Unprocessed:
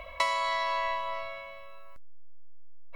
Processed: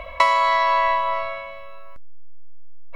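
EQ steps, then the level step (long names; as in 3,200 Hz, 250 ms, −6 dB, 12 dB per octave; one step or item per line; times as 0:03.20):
dynamic equaliser 1,200 Hz, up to +4 dB, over −43 dBFS, Q 0.86
high-shelf EQ 4,200 Hz −9 dB
+9.0 dB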